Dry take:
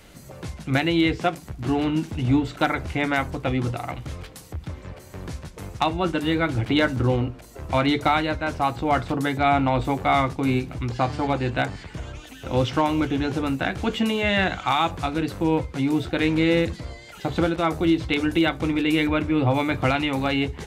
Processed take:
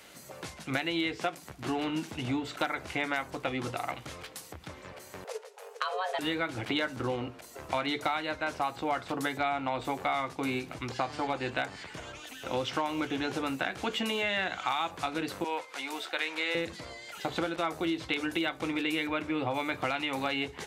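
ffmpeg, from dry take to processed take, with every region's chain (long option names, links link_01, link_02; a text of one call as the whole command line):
ffmpeg -i in.wav -filter_complex "[0:a]asettb=1/sr,asplit=3[link_01][link_02][link_03];[link_01]atrim=end=5.244[link_04];[link_02]atrim=start=5.24:end=6.19,asetpts=PTS-STARTPTS,afade=type=in:duration=0.004:curve=qsin,afade=type=out:start_time=0.946:duration=0.004:curve=qsin,agate=range=-9dB:threshold=-33dB:ratio=16:release=100:detection=peak,acompressor=threshold=-24dB:ratio=4:attack=3.2:release=140:knee=1:detection=peak,afreqshift=370[link_05];[link_03]atrim=start=6.186[link_06];[link_04][link_05]acrossfade=duration=0.004:curve1=hsin:curve2=qsin[link_07];[link_07][link_06]acrossfade=duration=0.004:curve1=qsin:curve2=hsin,asettb=1/sr,asplit=3[link_08][link_09][link_10];[link_08]atrim=end=15.444[link_11];[link_09]atrim=start=15.44:end=16.55,asetpts=PTS-STARTPTS,afade=type=in:duration=0.004:curve=qsin,afade=type=out:start_time=1.106:duration=0.004:curve=qsin,highpass=680,acompressor=mode=upward:threshold=-39dB:ratio=2.5:attack=3.2:release=140:knee=2.83:detection=peak[link_12];[link_10]atrim=start=16.546[link_13];[link_11][link_12]acrossfade=duration=0.004:curve1=hsin:curve2=qsin[link_14];[link_14][link_13]acrossfade=duration=0.004:curve1=qsin:curve2=hsin,highpass=frequency=590:poles=1,acompressor=threshold=-28dB:ratio=4" out.wav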